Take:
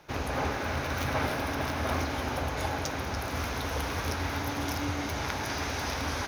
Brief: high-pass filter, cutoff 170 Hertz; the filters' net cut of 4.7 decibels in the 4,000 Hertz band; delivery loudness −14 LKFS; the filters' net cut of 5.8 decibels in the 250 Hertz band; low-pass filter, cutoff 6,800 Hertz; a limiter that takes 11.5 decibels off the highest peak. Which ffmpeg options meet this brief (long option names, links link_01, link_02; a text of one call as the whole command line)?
ffmpeg -i in.wav -af "highpass=170,lowpass=6800,equalizer=frequency=250:width_type=o:gain=-6,equalizer=frequency=4000:width_type=o:gain=-5.5,volume=23dB,alimiter=limit=-5dB:level=0:latency=1" out.wav